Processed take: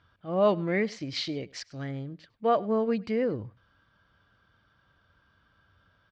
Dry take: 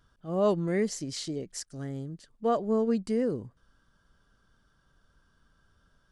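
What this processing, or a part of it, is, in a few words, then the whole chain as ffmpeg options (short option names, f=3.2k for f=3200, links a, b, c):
guitar cabinet: -filter_complex "[0:a]highpass=86,equalizer=f=96:t=q:w=4:g=6,equalizer=f=160:t=q:w=4:g=-6,equalizer=f=240:t=q:w=4:g=-6,equalizer=f=400:t=q:w=4:g=-6,equalizer=f=2.3k:t=q:w=4:g=7,lowpass=f=4.2k:w=0.5412,lowpass=f=4.2k:w=1.3066,asettb=1/sr,asplit=3[a][b][c];[a]atrim=end=1.154[d];[b]atrim=start=1.15:end=1.91,asetpts=PTS-STARTPTS,afade=t=in:d=0.004:c=qsin,afade=t=out:st=0.756:d=0.004:c=qsin,equalizer=f=5k:w=0.49:g=5.5[e];[c]atrim=start=1.906[f];[d][e]acrossfade=d=0.004:c1=hsin:c2=qsin[g];[g][f]acrossfade=d=0.004:c1=qsin:c2=hsin,aecho=1:1:101:0.0668,volume=4dB"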